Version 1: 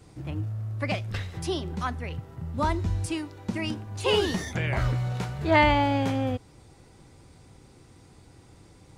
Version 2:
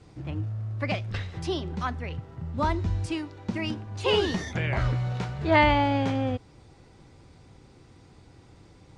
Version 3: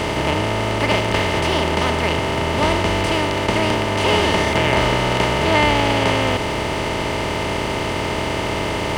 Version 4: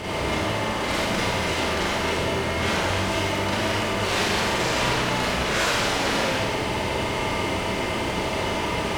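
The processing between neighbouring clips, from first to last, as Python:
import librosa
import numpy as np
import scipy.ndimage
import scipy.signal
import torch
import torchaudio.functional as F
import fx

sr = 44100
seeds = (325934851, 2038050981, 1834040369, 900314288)

y1 = scipy.signal.sosfilt(scipy.signal.butter(2, 5900.0, 'lowpass', fs=sr, output='sos'), x)
y2 = fx.bin_compress(y1, sr, power=0.2)
y2 = fx.high_shelf(y2, sr, hz=5900.0, db=10.0)
y2 = np.sign(y2) * np.maximum(np.abs(y2) - 10.0 ** (-37.0 / 20.0), 0.0)
y3 = fx.cheby_harmonics(y2, sr, harmonics=(3, 7), levels_db=(-8, -31), full_scale_db=-1.5)
y3 = 10.0 ** (-16.0 / 20.0) * np.tanh(y3 / 10.0 ** (-16.0 / 20.0))
y3 = fx.rev_schroeder(y3, sr, rt60_s=1.2, comb_ms=32, drr_db=-7.5)
y3 = y3 * librosa.db_to_amplitude(-1.0)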